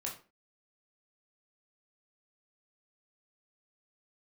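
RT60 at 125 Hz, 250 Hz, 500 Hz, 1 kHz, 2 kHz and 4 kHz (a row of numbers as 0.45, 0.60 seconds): 0.35, 0.40, 0.40, 0.35, 0.30, 0.25 seconds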